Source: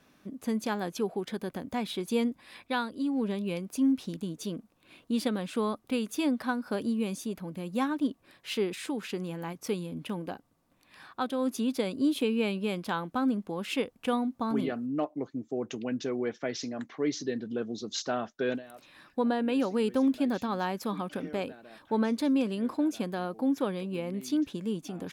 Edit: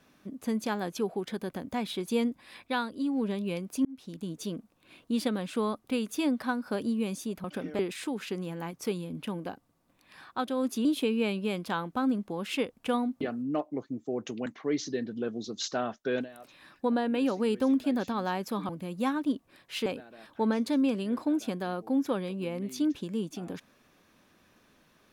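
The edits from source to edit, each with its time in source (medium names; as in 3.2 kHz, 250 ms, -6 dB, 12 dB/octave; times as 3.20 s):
3.85–4.33 s: fade in
7.44–8.61 s: swap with 21.03–21.38 s
11.67–12.04 s: delete
14.40–14.65 s: delete
15.90–16.80 s: delete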